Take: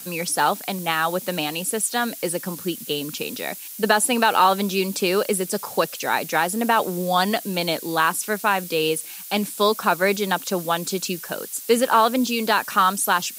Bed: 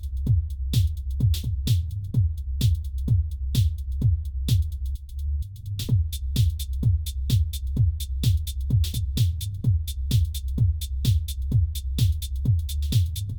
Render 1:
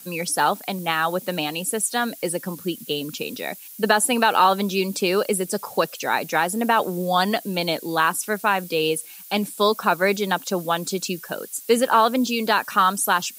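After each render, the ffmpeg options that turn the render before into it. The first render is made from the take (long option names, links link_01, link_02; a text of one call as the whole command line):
ffmpeg -i in.wav -af "afftdn=noise_reduction=7:noise_floor=-37" out.wav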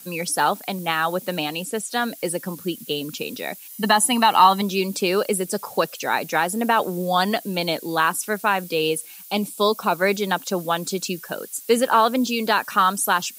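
ffmpeg -i in.wav -filter_complex "[0:a]asettb=1/sr,asplit=3[link_01][link_02][link_03];[link_01]atrim=end=1.434[link_04];[link_02]atrim=start=1.43:end=2.18,asetpts=PTS-STARTPTS,afade=type=in:duration=0.004:curve=qsin,afade=type=out:start_time=0.746:duration=0.004:curve=qsin,acrossover=split=7200[link_05][link_06];[link_06]acompressor=threshold=-36dB:ratio=4:attack=1:release=60[link_07];[link_05][link_07]amix=inputs=2:normalize=0[link_08];[link_03]atrim=start=2.176[link_09];[link_04][link_08]acrossfade=duration=0.004:curve1=hsin:curve2=qsin[link_10];[link_10][link_09]acrossfade=duration=0.004:curve1=qsin:curve2=hsin,asettb=1/sr,asplit=3[link_11][link_12][link_13];[link_11]atrim=end=3.704[link_14];[link_12]atrim=start=3.7:end=4.62,asetpts=PTS-STARTPTS,afade=type=in:duration=0.004:curve=qsin,afade=type=out:start_time=0.916:duration=0.004:curve=qsin,aecho=1:1:1:0.65,atrim=end_sample=40572[link_15];[link_13]atrim=start=4.616[link_16];[link_14][link_15]acrossfade=duration=0.004:curve1=hsin:curve2=qsin[link_17];[link_17][link_16]acrossfade=duration=0.004:curve1=qsin:curve2=hsin,asettb=1/sr,asplit=3[link_18][link_19][link_20];[link_18]atrim=end=9.264[link_21];[link_19]atrim=start=9.26:end=9.95,asetpts=PTS-STARTPTS,afade=type=in:duration=0.004:curve=qsin,afade=type=out:start_time=0.686:duration=0.004:curve=qsin,equalizer=frequency=1700:width_type=o:width=0.36:gain=-14[link_22];[link_20]atrim=start=9.946[link_23];[link_21][link_22]acrossfade=duration=0.004:curve1=hsin:curve2=qsin[link_24];[link_24][link_23]acrossfade=duration=0.004:curve1=qsin:curve2=hsin" out.wav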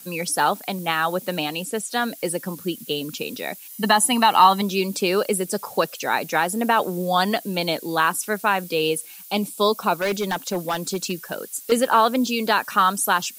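ffmpeg -i in.wav -filter_complex "[0:a]asettb=1/sr,asplit=3[link_01][link_02][link_03];[link_01]atrim=end=10.014[link_04];[link_02]atrim=start=10.01:end=11.72,asetpts=PTS-STARTPTS,afade=type=in:duration=0.004:curve=qsin,afade=type=out:start_time=1.706:duration=0.004:curve=qsin,asoftclip=type=hard:threshold=-18.5dB[link_05];[link_03]atrim=start=11.716[link_06];[link_04][link_05]acrossfade=duration=0.004:curve1=hsin:curve2=qsin[link_07];[link_07][link_06]acrossfade=duration=0.004:curve1=qsin:curve2=hsin" out.wav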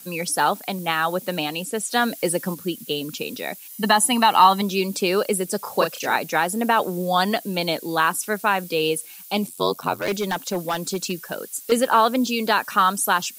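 ffmpeg -i in.wav -filter_complex "[0:a]asettb=1/sr,asplit=3[link_01][link_02][link_03];[link_01]atrim=end=5.624[link_04];[link_02]atrim=start=5.62:end=6.16,asetpts=PTS-STARTPTS,afade=type=in:duration=0.004:curve=qsin,afade=type=out:start_time=0.536:duration=0.004:curve=qsin,asplit=2[link_05][link_06];[link_06]adelay=32,volume=-4.5dB[link_07];[link_05][link_07]amix=inputs=2:normalize=0,atrim=end_sample=23814[link_08];[link_03]atrim=start=6.156[link_09];[link_04][link_08]acrossfade=duration=0.004:curve1=hsin:curve2=qsin[link_10];[link_10][link_09]acrossfade=duration=0.004:curve1=qsin:curve2=hsin,asettb=1/sr,asplit=3[link_11][link_12][link_13];[link_11]atrim=end=9.464[link_14];[link_12]atrim=start=9.46:end=10.08,asetpts=PTS-STARTPTS,afade=type=in:duration=0.004:curve=qsin,afade=type=out:start_time=0.616:duration=0.004:curve=qsin,aeval=exprs='val(0)*sin(2*PI*45*n/s)':channel_layout=same[link_15];[link_13]atrim=start=10.076[link_16];[link_14][link_15]acrossfade=duration=0.004:curve1=hsin:curve2=qsin[link_17];[link_17][link_16]acrossfade=duration=0.004:curve1=qsin:curve2=hsin,asplit=3[link_18][link_19][link_20];[link_18]atrim=end=1.812[link_21];[link_19]atrim=start=1.808:end=2.542,asetpts=PTS-STARTPTS,volume=3dB[link_22];[link_20]atrim=start=2.538[link_23];[link_21][link_22]acrossfade=duration=0.004:curve1=hsin:curve2=hsin[link_24];[link_24][link_23]acrossfade=duration=0.004:curve1=hsin:curve2=hsin" out.wav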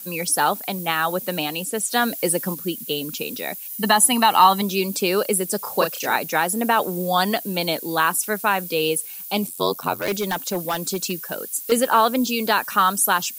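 ffmpeg -i in.wav -af "highshelf=frequency=12000:gain=12" out.wav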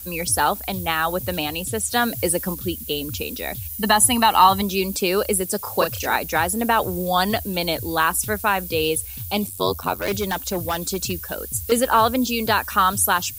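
ffmpeg -i in.wav -i bed.wav -filter_complex "[1:a]volume=-14.5dB[link_01];[0:a][link_01]amix=inputs=2:normalize=0" out.wav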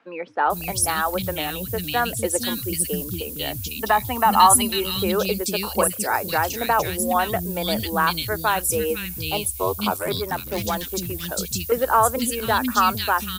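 ffmpeg -i in.wav -filter_complex "[0:a]acrossover=split=280|2200[link_01][link_02][link_03];[link_01]adelay=460[link_04];[link_03]adelay=500[link_05];[link_04][link_02][link_05]amix=inputs=3:normalize=0" out.wav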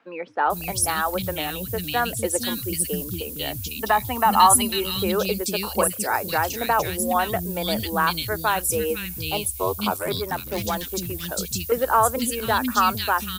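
ffmpeg -i in.wav -af "volume=-1dB" out.wav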